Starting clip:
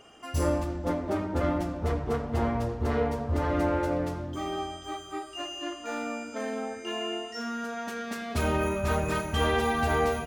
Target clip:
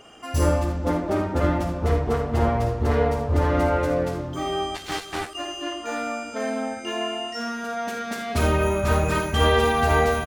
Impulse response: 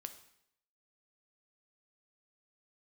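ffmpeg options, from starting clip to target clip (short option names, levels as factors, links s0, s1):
-filter_complex "[0:a]aecho=1:1:53|76:0.355|0.299,asplit=3[s0][s1][s2];[s0]afade=t=out:st=4.74:d=0.02[s3];[s1]aeval=exprs='0.0708*(cos(1*acos(clip(val(0)/0.0708,-1,1)))-cos(1*PI/2))+0.0224*(cos(7*acos(clip(val(0)/0.0708,-1,1)))-cos(7*PI/2))':c=same,afade=t=in:st=4.74:d=0.02,afade=t=out:st=5.33:d=0.02[s4];[s2]afade=t=in:st=5.33:d=0.02[s5];[s3][s4][s5]amix=inputs=3:normalize=0,volume=1.78"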